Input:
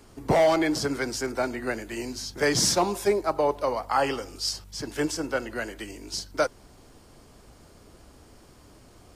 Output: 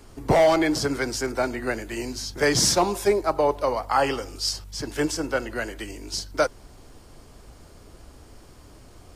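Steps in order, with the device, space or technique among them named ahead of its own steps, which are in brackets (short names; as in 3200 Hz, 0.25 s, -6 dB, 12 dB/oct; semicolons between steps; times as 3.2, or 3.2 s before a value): low shelf boost with a cut just above (low shelf 67 Hz +7 dB; bell 200 Hz -2 dB); gain +2.5 dB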